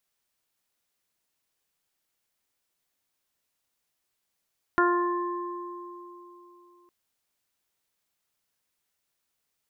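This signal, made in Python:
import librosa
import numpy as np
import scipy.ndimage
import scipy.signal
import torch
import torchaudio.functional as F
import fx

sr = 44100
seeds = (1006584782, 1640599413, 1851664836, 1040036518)

y = fx.additive(sr, length_s=2.11, hz=351.0, level_db=-22, upper_db=(-8, 0.0, 1, -7), decay_s=3.39, upper_decays_s=(0.93, 3.26, 0.52, 1.36))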